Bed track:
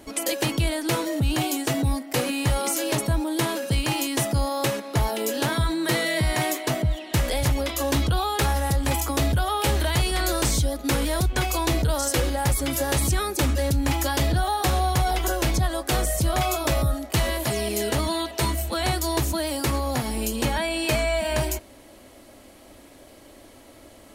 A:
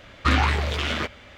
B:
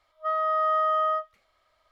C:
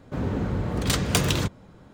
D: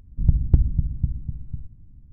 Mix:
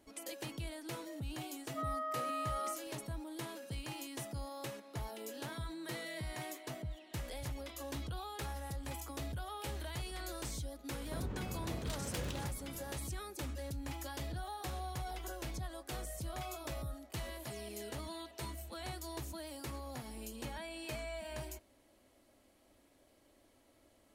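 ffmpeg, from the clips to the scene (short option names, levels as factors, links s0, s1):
-filter_complex "[0:a]volume=0.106[s0];[2:a]acompressor=threshold=0.0251:ratio=6:attack=3.2:release=140:knee=1:detection=peak[s1];[3:a]acompressor=threshold=0.0158:ratio=6:attack=3.2:release=140:knee=1:detection=peak[s2];[s1]atrim=end=1.91,asetpts=PTS-STARTPTS,volume=0.562,afade=t=in:d=0.004:c=hsin,afade=t=out:st=1.906:d=0.004:c=hsin,adelay=1530[s3];[s2]atrim=end=1.93,asetpts=PTS-STARTPTS,volume=0.668,afade=t=in:d=0.004:c=hsin,afade=t=out:st=1.926:d=0.004:c=hsin,adelay=11000[s4];[s0][s3][s4]amix=inputs=3:normalize=0"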